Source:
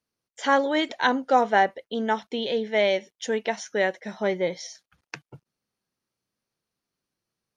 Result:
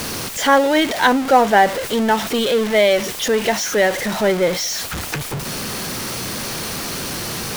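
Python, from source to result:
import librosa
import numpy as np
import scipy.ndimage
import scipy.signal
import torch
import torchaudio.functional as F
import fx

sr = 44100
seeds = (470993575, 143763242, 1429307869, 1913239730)

y = x + 0.5 * 10.0 ** (-24.5 / 20.0) * np.sign(x)
y = y * librosa.db_to_amplitude(5.5)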